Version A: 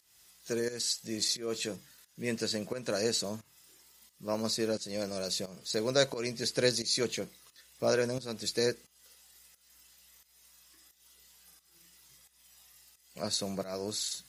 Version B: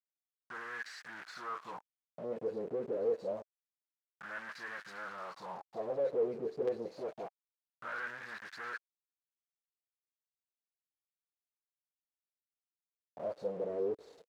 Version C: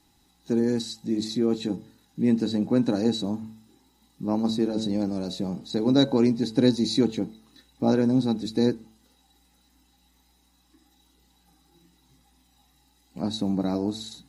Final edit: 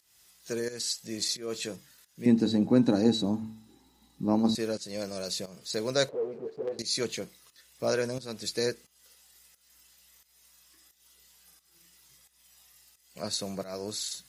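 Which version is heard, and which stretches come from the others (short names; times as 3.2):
A
2.26–4.55 from C
6.09–6.79 from B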